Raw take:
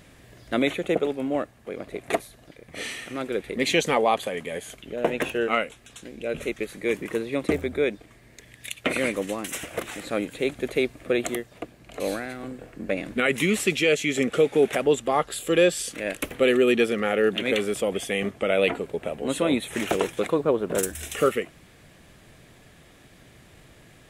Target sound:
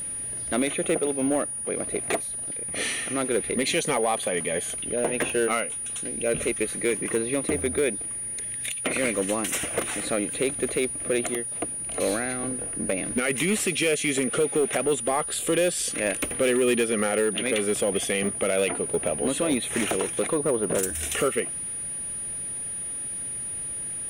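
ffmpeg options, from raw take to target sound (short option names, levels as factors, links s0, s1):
-af "alimiter=limit=0.133:level=0:latency=1:release=242,aeval=exprs='val(0)+0.02*sin(2*PI*9600*n/s)':c=same,volume=11.2,asoftclip=hard,volume=0.0891,volume=1.58"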